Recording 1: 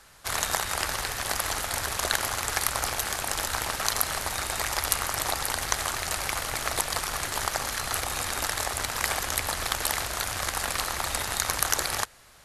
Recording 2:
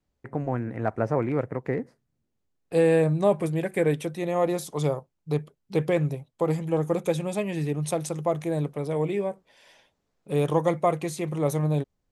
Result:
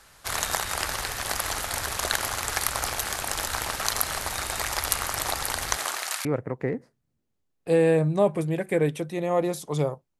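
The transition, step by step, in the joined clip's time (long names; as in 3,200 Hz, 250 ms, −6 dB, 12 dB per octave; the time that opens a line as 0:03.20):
recording 1
0:05.76–0:06.25: high-pass filter 180 Hz → 1,500 Hz
0:06.25: continue with recording 2 from 0:01.30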